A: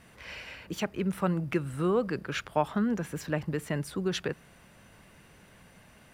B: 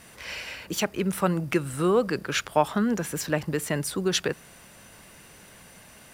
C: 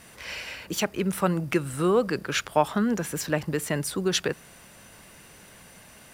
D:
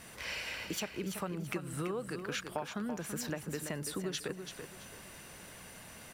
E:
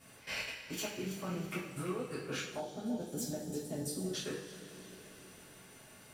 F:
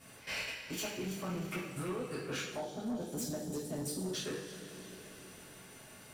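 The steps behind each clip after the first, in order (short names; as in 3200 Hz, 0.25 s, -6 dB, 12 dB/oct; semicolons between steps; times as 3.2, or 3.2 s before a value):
tone controls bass -4 dB, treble +8 dB; gain +5.5 dB
nothing audible
compressor 6:1, threshold -34 dBFS, peak gain reduction 18 dB; feedback echo 0.334 s, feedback 26%, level -8 dB; gain -1.5 dB
level quantiser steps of 20 dB; two-slope reverb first 0.45 s, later 4.9 s, from -18 dB, DRR -10 dB; spectral gain 2.59–4.14, 890–3000 Hz -12 dB; gain -7.5 dB
soft clip -34 dBFS, distortion -15 dB; gain +2.5 dB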